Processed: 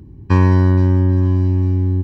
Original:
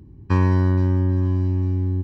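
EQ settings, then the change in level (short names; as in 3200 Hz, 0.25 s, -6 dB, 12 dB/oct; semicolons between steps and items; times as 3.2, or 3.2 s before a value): notch 1300 Hz, Q 7.5; +5.5 dB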